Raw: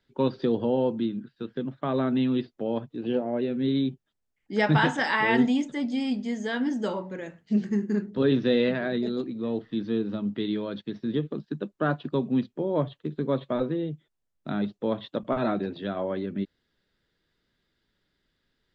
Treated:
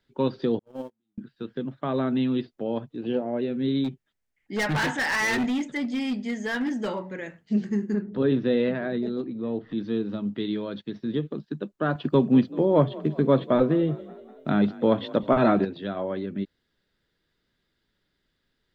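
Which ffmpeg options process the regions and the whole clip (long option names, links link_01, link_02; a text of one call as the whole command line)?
ffmpeg -i in.wav -filter_complex "[0:a]asettb=1/sr,asplit=3[link_01][link_02][link_03];[link_01]atrim=end=0.594[link_04];[link_02]atrim=start=0.59:end=1.18,asetpts=PTS-STARTPTS,afade=type=in:duration=0.004:curve=qsin,afade=type=out:start_time=0.586:duration=0.004:curve=qsin,aeval=exprs='val(0)+0.5*0.0158*sgn(val(0))':channel_layout=same,asplit=2[link_05][link_06];[link_06]adelay=19,volume=-3.5dB[link_07];[link_05][link_07]amix=inputs=2:normalize=0,atrim=end_sample=26019,agate=range=-53dB:threshold=-19dB:ratio=16:release=100:detection=peak[link_08];[link_03]atrim=start=1.176[link_09];[link_04][link_08]acrossfade=duration=0.004:curve1=hsin:curve2=qsin[link_10];[link_10][link_09]acrossfade=duration=0.004:curve1=qsin:curve2=hsin,asettb=1/sr,asplit=3[link_11][link_12][link_13];[link_11]atrim=end=3.844[link_14];[link_12]atrim=start=3.84:end=7.37,asetpts=PTS-STARTPTS,afade=type=in:duration=0.004:curve=qsin,afade=type=out:start_time=3.526:duration=0.004:curve=qsin,equalizer=frequency=2000:width=2:gain=7,asoftclip=type=hard:threshold=-22.5dB[link_15];[link_13]atrim=start=7.366[link_16];[link_14][link_15]acrossfade=duration=0.004:curve1=hsin:curve2=qsin[link_17];[link_17][link_16]acrossfade=duration=0.004:curve1=qsin:curve2=hsin,asettb=1/sr,asplit=3[link_18][link_19][link_20];[link_18]atrim=end=7.944[link_21];[link_19]atrim=start=7.94:end=9.78,asetpts=PTS-STARTPTS,afade=type=in:duration=0.004:curve=qsin,afade=type=out:start_time=1.836:duration=0.004:curve=qsin,lowpass=frequency=2000:poles=1,acompressor=mode=upward:threshold=-30dB:ratio=2.5:attack=3.2:release=140:knee=2.83:detection=peak[link_22];[link_20]atrim=start=9.776[link_23];[link_21][link_22]acrossfade=duration=0.004:curve1=hsin:curve2=qsin[link_24];[link_24][link_23]acrossfade=duration=0.004:curve1=qsin:curve2=hsin,asettb=1/sr,asplit=3[link_25][link_26][link_27];[link_25]atrim=end=11.954[link_28];[link_26]atrim=start=11.95:end=15.65,asetpts=PTS-STARTPTS,afade=type=in:duration=0.004:curve=qsin,afade=type=out:start_time=3.696:duration=0.004:curve=qsin,bandreject=frequency=3800:width=8.9,acontrast=72,asplit=6[link_29][link_30][link_31][link_32][link_33][link_34];[link_30]adelay=192,afreqshift=33,volume=-20dB[link_35];[link_31]adelay=384,afreqshift=66,volume=-24.7dB[link_36];[link_32]adelay=576,afreqshift=99,volume=-29.5dB[link_37];[link_33]adelay=768,afreqshift=132,volume=-34.2dB[link_38];[link_34]adelay=960,afreqshift=165,volume=-38.9dB[link_39];[link_29][link_35][link_36][link_37][link_38][link_39]amix=inputs=6:normalize=0,atrim=end_sample=163170[link_40];[link_27]atrim=start=15.646[link_41];[link_28][link_40]acrossfade=duration=0.004:curve1=hsin:curve2=qsin[link_42];[link_42][link_41]acrossfade=duration=0.004:curve1=qsin:curve2=hsin" out.wav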